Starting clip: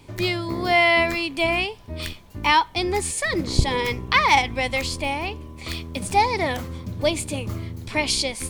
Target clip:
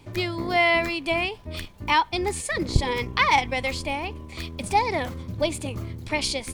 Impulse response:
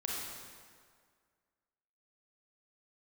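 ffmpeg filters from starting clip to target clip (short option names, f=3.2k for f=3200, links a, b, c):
-af "highshelf=f=4.2k:g=-3,areverse,acompressor=mode=upward:threshold=-31dB:ratio=2.5,areverse,atempo=1.3,volume=-2dB"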